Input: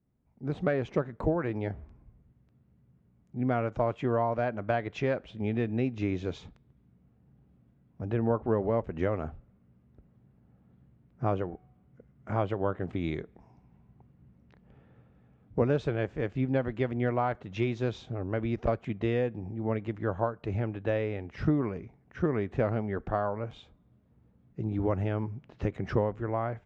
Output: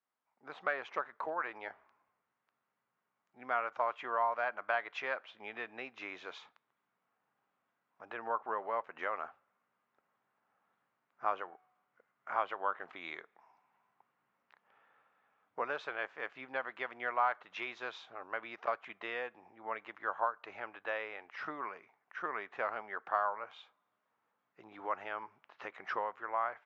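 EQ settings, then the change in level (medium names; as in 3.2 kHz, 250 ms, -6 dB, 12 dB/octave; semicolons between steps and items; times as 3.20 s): resonant high-pass 1.1 kHz, resonance Q 1.7; distance through air 110 m; 0.0 dB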